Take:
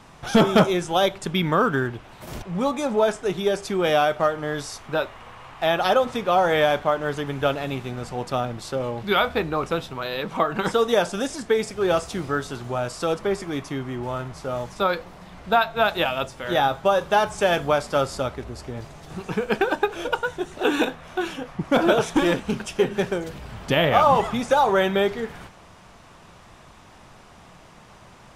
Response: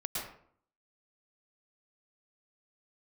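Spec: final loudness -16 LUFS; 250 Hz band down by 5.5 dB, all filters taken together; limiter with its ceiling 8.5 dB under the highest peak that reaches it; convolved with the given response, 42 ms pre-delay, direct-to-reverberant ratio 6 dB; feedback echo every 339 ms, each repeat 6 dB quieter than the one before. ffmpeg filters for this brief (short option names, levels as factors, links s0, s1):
-filter_complex "[0:a]equalizer=f=250:t=o:g=-8,alimiter=limit=0.188:level=0:latency=1,aecho=1:1:339|678|1017|1356|1695|2034:0.501|0.251|0.125|0.0626|0.0313|0.0157,asplit=2[s0][s1];[1:a]atrim=start_sample=2205,adelay=42[s2];[s1][s2]afir=irnorm=-1:irlink=0,volume=0.335[s3];[s0][s3]amix=inputs=2:normalize=0,volume=2.82"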